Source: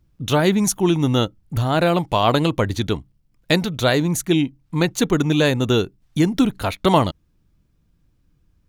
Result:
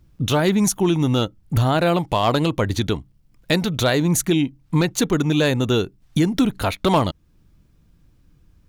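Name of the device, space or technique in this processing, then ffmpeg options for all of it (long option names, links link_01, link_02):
clipper into limiter: -af "asoftclip=type=hard:threshold=-7.5dB,alimiter=limit=-15.5dB:level=0:latency=1:release=376,volume=6.5dB"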